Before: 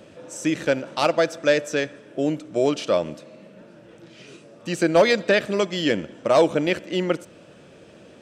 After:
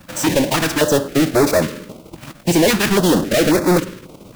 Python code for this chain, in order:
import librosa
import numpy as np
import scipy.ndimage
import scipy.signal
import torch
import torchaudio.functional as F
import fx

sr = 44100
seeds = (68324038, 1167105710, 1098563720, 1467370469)

p1 = fx.halfwave_hold(x, sr)
p2 = p1 + fx.echo_filtered(p1, sr, ms=103, feedback_pct=77, hz=1700.0, wet_db=-21.5, dry=0)
p3 = fx.vibrato(p2, sr, rate_hz=1.4, depth_cents=36.0)
p4 = fx.leveller(p3, sr, passes=5)
p5 = fx.stretch_vocoder(p4, sr, factor=0.53)
p6 = np.sign(p5) * np.maximum(np.abs(p5) - 10.0 ** (-27.0 / 20.0), 0.0)
p7 = p5 + (p6 * librosa.db_to_amplitude(-6.0))
p8 = fx.filter_held_notch(p7, sr, hz=3.7, low_hz=420.0, high_hz=3000.0)
y = p8 * librosa.db_to_amplitude(-7.5)